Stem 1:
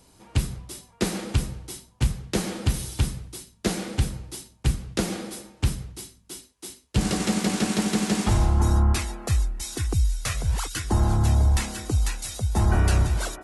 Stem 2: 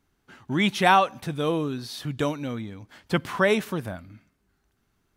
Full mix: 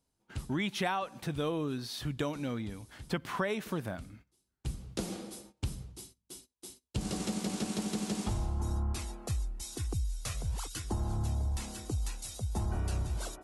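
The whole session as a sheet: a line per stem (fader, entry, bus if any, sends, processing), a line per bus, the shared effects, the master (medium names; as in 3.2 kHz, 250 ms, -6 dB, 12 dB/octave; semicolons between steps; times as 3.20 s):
-8.5 dB, 0.00 s, no send, peaking EQ 1.8 kHz -6.5 dB 1 oct; auto duck -17 dB, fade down 0.85 s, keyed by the second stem
-3.5 dB, 0.00 s, no send, peaking EQ 88 Hz -6.5 dB 0.21 oct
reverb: none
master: gate -54 dBFS, range -15 dB; compression 8:1, threshold -29 dBFS, peak gain reduction 12.5 dB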